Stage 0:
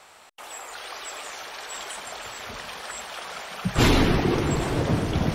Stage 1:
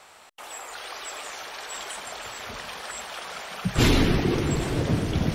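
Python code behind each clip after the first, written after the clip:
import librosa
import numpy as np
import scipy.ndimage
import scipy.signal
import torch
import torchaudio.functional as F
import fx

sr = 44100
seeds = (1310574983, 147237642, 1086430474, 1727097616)

y = fx.dynamic_eq(x, sr, hz=910.0, q=0.85, threshold_db=-36.0, ratio=4.0, max_db=-5)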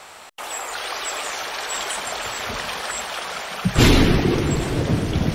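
y = fx.rider(x, sr, range_db=3, speed_s=2.0)
y = y * librosa.db_to_amplitude(6.0)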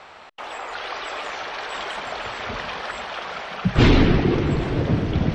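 y = fx.air_absorb(x, sr, metres=200.0)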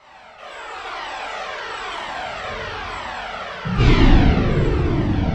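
y = fx.rev_plate(x, sr, seeds[0], rt60_s=2.6, hf_ratio=0.65, predelay_ms=0, drr_db=-9.5)
y = fx.comb_cascade(y, sr, direction='falling', hz=1.0)
y = y * librosa.db_to_amplitude(-4.0)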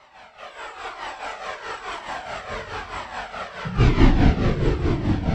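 y = fx.dynamic_eq(x, sr, hz=3500.0, q=1.0, threshold_db=-38.0, ratio=4.0, max_db=-5)
y = fx.echo_wet_highpass(y, sr, ms=144, feedback_pct=84, hz=3100.0, wet_db=-7.0)
y = y * (1.0 - 0.66 / 2.0 + 0.66 / 2.0 * np.cos(2.0 * np.pi * 4.7 * (np.arange(len(y)) / sr)))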